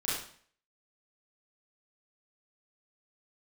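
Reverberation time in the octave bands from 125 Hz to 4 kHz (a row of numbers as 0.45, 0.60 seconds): 0.55, 0.55, 0.50, 0.50, 0.50, 0.50 seconds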